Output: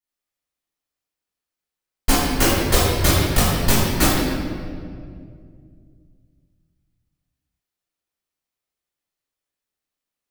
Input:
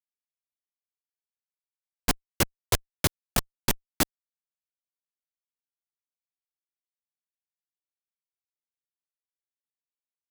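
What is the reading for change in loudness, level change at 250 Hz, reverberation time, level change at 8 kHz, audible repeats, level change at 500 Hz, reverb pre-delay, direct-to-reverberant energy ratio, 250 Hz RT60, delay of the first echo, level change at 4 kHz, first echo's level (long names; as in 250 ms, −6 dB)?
+10.0 dB, +13.5 dB, 2.2 s, +8.5 dB, no echo audible, +13.0 dB, 3 ms, −11.0 dB, 3.0 s, no echo audible, +10.0 dB, no echo audible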